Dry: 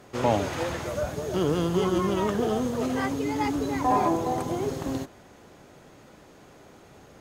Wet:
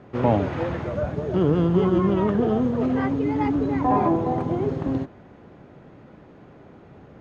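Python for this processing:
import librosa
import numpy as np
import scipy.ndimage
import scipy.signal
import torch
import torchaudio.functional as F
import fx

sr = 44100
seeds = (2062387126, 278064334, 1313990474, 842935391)

y = scipy.signal.sosfilt(scipy.signal.butter(2, 2400.0, 'lowpass', fs=sr, output='sos'), x)
y = fx.peak_eq(y, sr, hz=150.0, db=7.5, octaves=2.8)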